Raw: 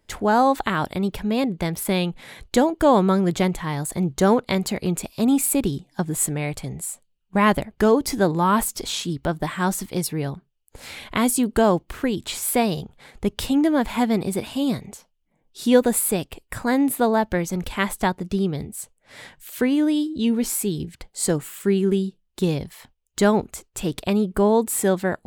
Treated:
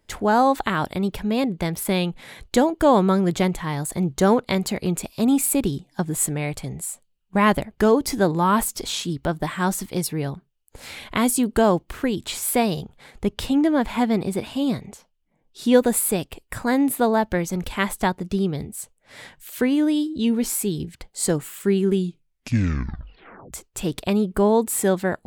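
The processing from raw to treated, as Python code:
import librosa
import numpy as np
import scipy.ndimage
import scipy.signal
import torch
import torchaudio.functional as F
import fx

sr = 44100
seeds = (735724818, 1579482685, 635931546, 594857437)

y = fx.high_shelf(x, sr, hz=6600.0, db=-6.5, at=(13.25, 15.74))
y = fx.edit(y, sr, fx.tape_stop(start_s=21.95, length_s=1.58), tone=tone)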